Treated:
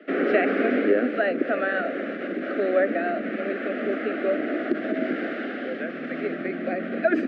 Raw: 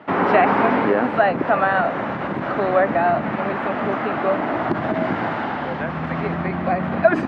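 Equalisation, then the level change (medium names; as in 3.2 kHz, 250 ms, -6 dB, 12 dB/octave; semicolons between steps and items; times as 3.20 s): steep high-pass 240 Hz 36 dB/octave; Butterworth band-stop 940 Hz, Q 0.97; low-pass 2.1 kHz 6 dB/octave; 0.0 dB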